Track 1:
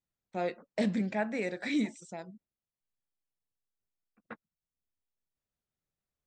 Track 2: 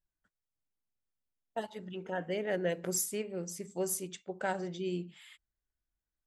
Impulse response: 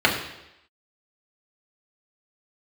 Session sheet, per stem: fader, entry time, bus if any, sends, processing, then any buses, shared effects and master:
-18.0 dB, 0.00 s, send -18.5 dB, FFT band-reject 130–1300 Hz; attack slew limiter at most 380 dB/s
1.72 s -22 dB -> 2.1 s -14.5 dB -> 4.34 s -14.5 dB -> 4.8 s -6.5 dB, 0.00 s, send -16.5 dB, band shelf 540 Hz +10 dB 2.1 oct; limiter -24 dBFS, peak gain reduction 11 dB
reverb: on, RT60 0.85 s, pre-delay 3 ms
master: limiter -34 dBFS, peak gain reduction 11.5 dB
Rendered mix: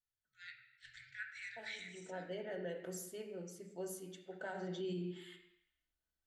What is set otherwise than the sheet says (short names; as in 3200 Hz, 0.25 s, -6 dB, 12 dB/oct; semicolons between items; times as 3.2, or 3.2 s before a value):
stem 1 -18.0 dB -> -8.5 dB; stem 2: missing band shelf 540 Hz +10 dB 2.1 oct